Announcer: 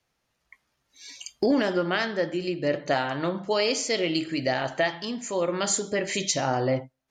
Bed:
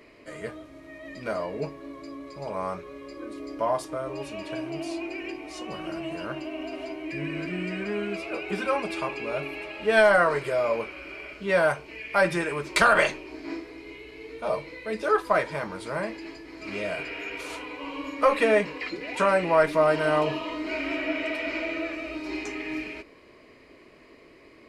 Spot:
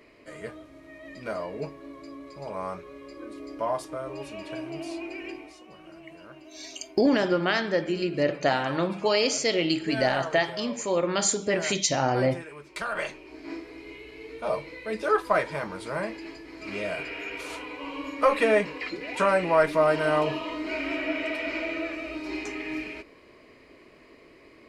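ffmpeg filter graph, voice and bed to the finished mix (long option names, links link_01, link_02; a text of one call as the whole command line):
ffmpeg -i stem1.wav -i stem2.wav -filter_complex "[0:a]adelay=5550,volume=1dB[link_01];[1:a]volume=10.5dB,afade=type=out:start_time=5.37:duration=0.21:silence=0.281838,afade=type=in:start_time=12.87:duration=0.9:silence=0.223872[link_02];[link_01][link_02]amix=inputs=2:normalize=0" out.wav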